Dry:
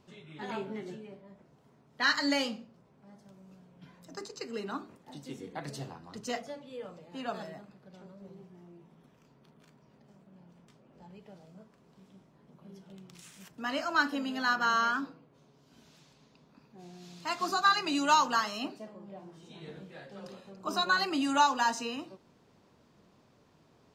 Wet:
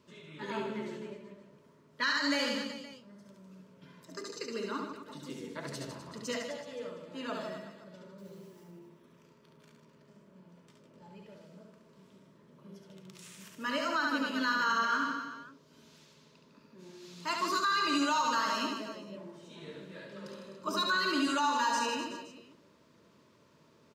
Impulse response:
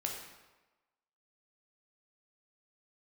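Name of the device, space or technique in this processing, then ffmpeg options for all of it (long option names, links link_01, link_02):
PA system with an anti-feedback notch: -filter_complex "[0:a]asettb=1/sr,asplit=3[link_01][link_02][link_03];[link_01]atrim=end=8.184[link_04];[link_02]atrim=start=8.18:end=8.64,asetpts=PTS-STARTPTS,afade=type=in:duration=0.004:curve=qsin,afade=type=out:start_time=0.456:duration=0.004:curve=qsin,aemphasis=mode=production:type=75kf[link_05];[link_03]atrim=start=8.636[link_06];[link_04][link_05]acrossfade=duration=0.004:curve1=hsin:curve2=qsin[link_07];[link_07][link_06]acrossfade=duration=0.004:curve1=qsin:curve2=hsin,highpass=frequency=160:poles=1,asuperstop=centerf=760:order=12:qfactor=4.6,aecho=1:1:70|154|254.8|375.8|520.9:0.631|0.398|0.251|0.158|0.1,alimiter=limit=-20.5dB:level=0:latency=1:release=96"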